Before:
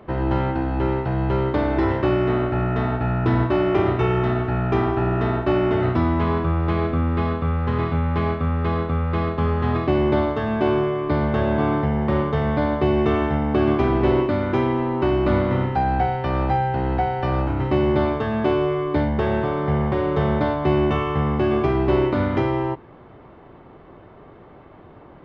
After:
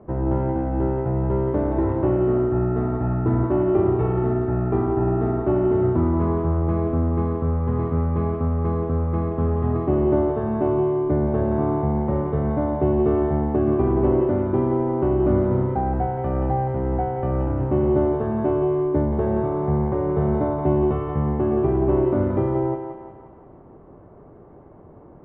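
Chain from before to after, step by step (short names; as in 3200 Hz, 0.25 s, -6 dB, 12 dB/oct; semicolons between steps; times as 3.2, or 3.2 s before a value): Bessel low-pass 650 Hz, order 2; on a send: thinning echo 0.176 s, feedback 55%, high-pass 420 Hz, level -5 dB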